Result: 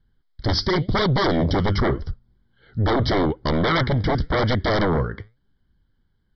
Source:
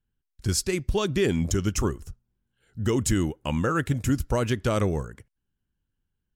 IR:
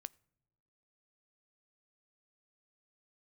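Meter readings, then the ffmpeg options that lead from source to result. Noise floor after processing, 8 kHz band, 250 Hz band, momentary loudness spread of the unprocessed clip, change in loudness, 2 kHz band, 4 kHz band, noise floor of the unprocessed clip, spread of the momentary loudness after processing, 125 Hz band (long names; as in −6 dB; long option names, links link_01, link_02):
−67 dBFS, below −15 dB, +3.5 dB, 8 LU, +4.5 dB, +7.5 dB, +8.0 dB, −81 dBFS, 10 LU, +4.5 dB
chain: -af "flanger=delay=0.2:depth=9.9:regen=80:speed=0.87:shape=sinusoidal,aresample=11025,aeval=exprs='0.158*sin(PI/2*4.47*val(0)/0.158)':channel_layout=same,aresample=44100,asuperstop=centerf=2600:order=8:qfactor=3.4"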